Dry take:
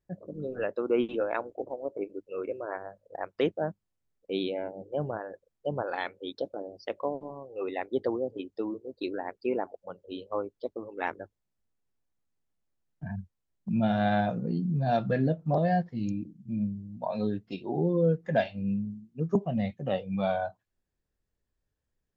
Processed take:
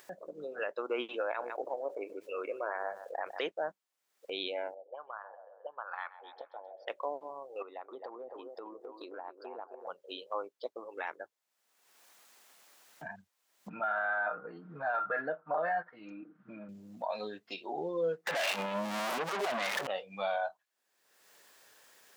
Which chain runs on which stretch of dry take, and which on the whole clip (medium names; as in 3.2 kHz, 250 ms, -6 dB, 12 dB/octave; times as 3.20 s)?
1.24–3.39 s: delay 152 ms -23 dB + level flattener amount 50%
4.74–6.88 s: bass shelf 200 Hz -8.5 dB + thinning echo 132 ms, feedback 55%, high-pass 350 Hz, level -16 dB + auto-wah 420–1200 Hz, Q 3.7, up, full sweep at -31 dBFS
7.62–9.87 s: resonant high shelf 1.6 kHz -7.5 dB, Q 3 + compression 3:1, threshold -43 dBFS + feedback echo behind a band-pass 264 ms, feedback 32%, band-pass 660 Hz, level -6 dB
13.69–16.69 s: resonant low-pass 1.4 kHz, resonance Q 6.3 + bass shelf 220 Hz -11.5 dB + comb 6.5 ms, depth 52%
18.27–19.87 s: jump at every zero crossing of -31.5 dBFS + overdrive pedal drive 35 dB, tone 4.6 kHz, clips at -12 dBFS
whole clip: high-pass 760 Hz 12 dB/octave; upward compressor, threshold -41 dBFS; peak limiter -27 dBFS; trim +3 dB